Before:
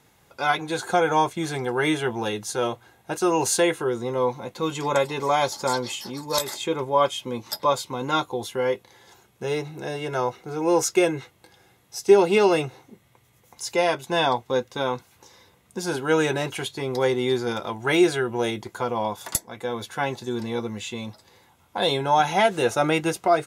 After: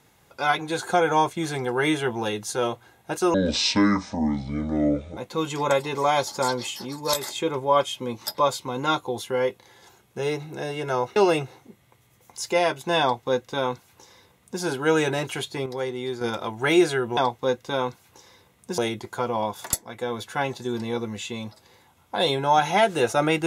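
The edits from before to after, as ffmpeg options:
ffmpeg -i in.wav -filter_complex "[0:a]asplit=8[link_01][link_02][link_03][link_04][link_05][link_06][link_07][link_08];[link_01]atrim=end=3.344[link_09];[link_02]atrim=start=3.34:end=4.42,asetpts=PTS-STARTPTS,asetrate=26019,aresample=44100,atrim=end_sample=80725,asetpts=PTS-STARTPTS[link_10];[link_03]atrim=start=4.416:end=10.412[link_11];[link_04]atrim=start=12.388:end=16.892[link_12];[link_05]atrim=start=16.888:end=17.442,asetpts=PTS-STARTPTS,volume=-7dB[link_13];[link_06]atrim=start=17.438:end=18.402[link_14];[link_07]atrim=start=14.238:end=15.852[link_15];[link_08]atrim=start=18.398[link_16];[link_09][link_10]acrossfade=duration=0.004:curve1=hsin:curve2=hsin[link_17];[link_17][link_11]acrossfade=duration=0.004:curve1=hsin:curve2=hsin[link_18];[link_18][link_12]acrossfade=duration=0.004:curve1=hsin:curve2=hsin[link_19];[link_19][link_13]acrossfade=duration=0.004:curve1=hsin:curve2=hsin[link_20];[link_20][link_14]acrossfade=duration=0.004:curve1=hsin:curve2=hsin[link_21];[link_21][link_15]acrossfade=duration=0.004:curve1=hsin:curve2=hsin[link_22];[link_22][link_16]acrossfade=duration=0.004:curve1=hsin:curve2=hsin" out.wav

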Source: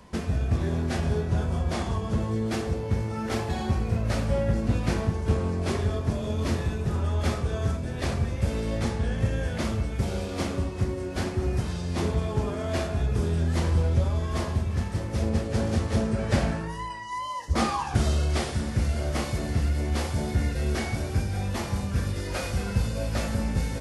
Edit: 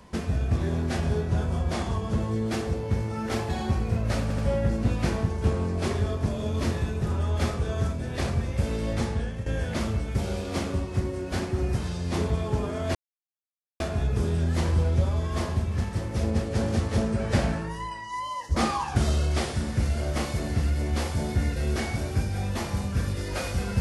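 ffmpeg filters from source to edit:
ffmpeg -i in.wav -filter_complex "[0:a]asplit=5[link_01][link_02][link_03][link_04][link_05];[link_01]atrim=end=4.302[link_06];[link_02]atrim=start=4.218:end=4.302[link_07];[link_03]atrim=start=4.218:end=9.3,asetpts=PTS-STARTPTS,afade=type=out:start_time=4.752:duration=0.33:silence=0.237137[link_08];[link_04]atrim=start=9.3:end=12.79,asetpts=PTS-STARTPTS,afade=type=in:duration=0.004:curve=hsin:silence=0.237137,afade=type=out:start_time=3.486:duration=0.004:curve=hsin,apad=pad_dur=0.85[link_09];[link_05]atrim=start=12.79,asetpts=PTS-STARTPTS,afade=type=in:duration=0.004:curve=hsin[link_10];[link_06][link_07]acrossfade=duration=0.004:curve1=hsin:curve2=hsin[link_11];[link_08][link_09][link_10]concat=n=3:v=0:a=1[link_12];[link_11][link_12]acrossfade=duration=0.004:curve1=hsin:curve2=hsin" out.wav

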